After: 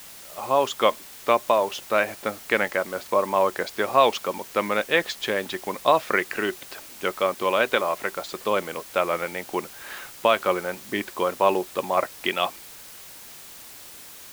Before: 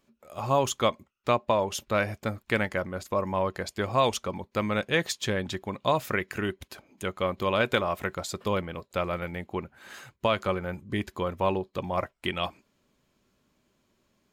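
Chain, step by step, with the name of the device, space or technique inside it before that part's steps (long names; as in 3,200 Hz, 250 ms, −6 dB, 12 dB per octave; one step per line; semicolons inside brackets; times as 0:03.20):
dictaphone (band-pass filter 340–3,800 Hz; automatic gain control; tape wow and flutter; white noise bed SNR 18 dB)
level −3 dB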